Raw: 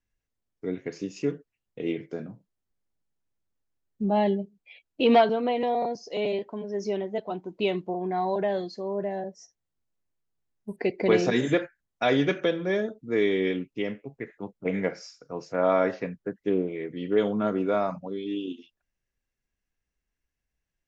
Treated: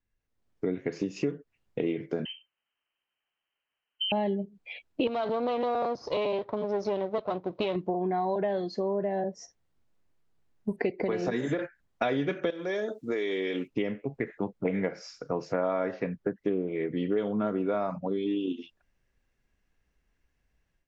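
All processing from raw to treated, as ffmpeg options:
ffmpeg -i in.wav -filter_complex "[0:a]asettb=1/sr,asplit=3[link_01][link_02][link_03];[link_01]atrim=end=2.254[link_04];[link_02]atrim=start=2.25:end=4.12,asetpts=PTS-STARTPTS,afade=type=in:duration=0.004:curve=qsin,afade=type=out:start_time=1.866:duration=0.004:curve=qsin,highpass=210,lowpass=frequency=2800:width_type=q:width=0.5098,lowpass=frequency=2800:width_type=q:width=0.6013,lowpass=frequency=2800:width_type=q:width=0.9,lowpass=frequency=2800:width_type=q:width=2.563,afreqshift=-3300[link_05];[link_03]atrim=start=4.116[link_06];[link_04][link_05]acrossfade=duration=0.004:curve1=hsin:curve2=qsin[link_07];[link_07][link_06]acrossfade=duration=0.004:curve1=qsin:curve2=hsin,asettb=1/sr,asplit=3[link_08][link_09][link_10];[link_08]atrim=end=5.074[link_11];[link_09]atrim=start=5.07:end=7.76,asetpts=PTS-STARTPTS,afade=type=in:duration=0.004:curve=qsin,afade=type=out:start_time=2.686:duration=0.004:curve=qsin,aeval=exprs='if(lt(val(0),0),0.251*val(0),val(0))':channel_layout=same,acompressor=threshold=-23dB:ratio=5:attack=3.2:release=140:knee=1:detection=peak,highpass=100,equalizer=frequency=110:width_type=q:width=4:gain=6,equalizer=frequency=210:width_type=q:width=4:gain=-5,equalizer=frequency=570:width_type=q:width=4:gain=6,equalizer=frequency=1100:width_type=q:width=4:gain=4,equalizer=frequency=1700:width_type=q:width=4:gain=-3,equalizer=frequency=3900:width_type=q:width=4:gain=8,lowpass=frequency=6100:width=0.5412,lowpass=frequency=6100:width=1.3066[link_12];[link_10]atrim=start=7.756[link_13];[link_11][link_12]acrossfade=duration=0.004:curve1=hsin:curve2=qsin[link_14];[link_14][link_13]acrossfade=duration=0.004:curve1=qsin:curve2=hsin,asettb=1/sr,asplit=3[link_15][link_16][link_17];[link_15]atrim=end=11.004[link_18];[link_16]atrim=start=11:end=11.59,asetpts=PTS-STARTPTS,afade=type=in:duration=0.004:curve=qsin,afade=type=out:start_time=0.586:duration=0.004:curve=qsin,equalizer=frequency=3000:width_type=o:width=0.91:gain=-5.5,acrossover=split=230|570[link_19][link_20][link_21];[link_19]acompressor=threshold=-38dB:ratio=4[link_22];[link_20]acompressor=threshold=-32dB:ratio=4[link_23];[link_21]acompressor=threshold=-33dB:ratio=4[link_24];[link_22][link_23][link_24]amix=inputs=3:normalize=0,bandreject=frequency=2400:width=24[link_25];[link_17]atrim=start=11.586[link_26];[link_18][link_25]acrossfade=duration=0.004:curve1=hsin:curve2=qsin[link_27];[link_27][link_26]acrossfade=duration=0.004:curve1=qsin:curve2=hsin,asettb=1/sr,asplit=3[link_28][link_29][link_30];[link_28]atrim=end=12.504[link_31];[link_29]atrim=start=12.5:end=13.68,asetpts=PTS-STARTPTS,afade=type=in:duration=0.004:curve=qsin,afade=type=out:start_time=1.176:duration=0.004:curve=qsin,bass=frequency=250:gain=-14,treble=frequency=4000:gain=13,acompressor=threshold=-32dB:ratio=4:attack=3.2:release=140:knee=1:detection=peak[link_32];[link_30]atrim=start=13.676[link_33];[link_31][link_32]acrossfade=duration=0.004:curve1=hsin:curve2=qsin[link_34];[link_34][link_33]acrossfade=duration=0.004:curve1=qsin:curve2=hsin,acompressor=threshold=-38dB:ratio=5,lowpass=frequency=2700:poles=1,dynaudnorm=framelen=250:gausssize=3:maxgain=11dB" out.wav

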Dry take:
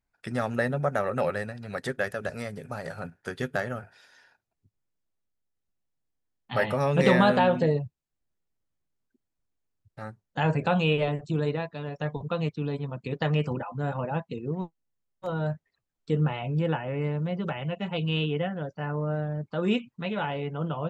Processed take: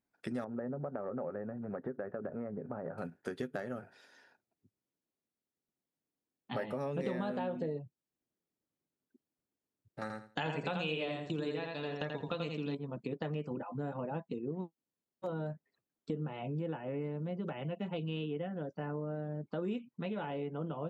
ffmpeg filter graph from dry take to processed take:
ffmpeg -i in.wav -filter_complex "[0:a]asettb=1/sr,asplit=3[link_01][link_02][link_03];[link_01]atrim=end=0.444[link_04];[link_02]atrim=start=0.44:end=2.98,asetpts=PTS-STARTPTS,afade=type=in:duration=0.004:curve=qsin,afade=type=out:start_time=2.536:duration=0.004:curve=qsin,lowpass=frequency=1400:width=0.5412,lowpass=frequency=1400:width=1.3066,acompressor=threshold=-33dB:ratio=2:attack=3.2:release=140:knee=1:detection=peak[link_05];[link_03]atrim=start=2.976[link_06];[link_04][link_05]acrossfade=duration=0.004:curve1=hsin:curve2=qsin[link_07];[link_07][link_06]acrossfade=duration=0.004:curve1=qsin:curve2=hsin,asettb=1/sr,asplit=3[link_08][link_09][link_10];[link_08]atrim=end=10.014[link_11];[link_09]atrim=start=10.01:end=12.75,asetpts=PTS-STARTPTS,afade=type=in:duration=0.004:curve=qsin,afade=type=out:start_time=2.736:duration=0.004:curve=qsin,agate=range=-14dB:threshold=-46dB:ratio=16:release=100:detection=peak,equalizer=frequency=4600:width=0.33:gain=14.5,aecho=1:1:84|168|252:0.631|0.12|0.0228,atrim=end_sample=120834[link_12];[link_10]atrim=start=12.746[link_13];[link_11][link_12]acrossfade=duration=0.004:curve1=hsin:curve2=qsin[link_14];[link_14][link_13]acrossfade=duration=0.004:curve1=qsin:curve2=hsin,highpass=frequency=190:poles=1,equalizer=frequency=280:width_type=o:width=2.2:gain=11.5,acompressor=threshold=-30dB:ratio=4,volume=-6dB" out.wav

